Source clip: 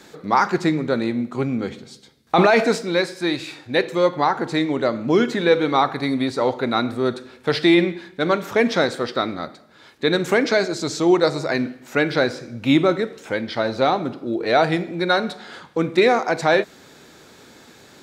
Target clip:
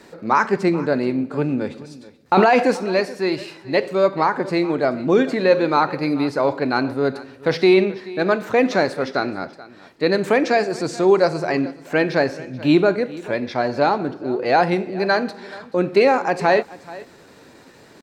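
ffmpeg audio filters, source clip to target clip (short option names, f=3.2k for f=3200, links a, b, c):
-af "highshelf=f=2.4k:g=-7.5,asetrate=48091,aresample=44100,atempo=0.917004,aecho=1:1:431:0.112,volume=1.5dB"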